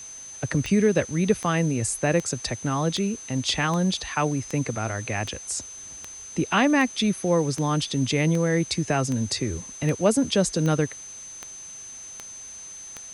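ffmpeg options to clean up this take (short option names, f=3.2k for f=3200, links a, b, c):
-af "adeclick=t=4,bandreject=f=6.2k:w=30,afwtdn=0.004"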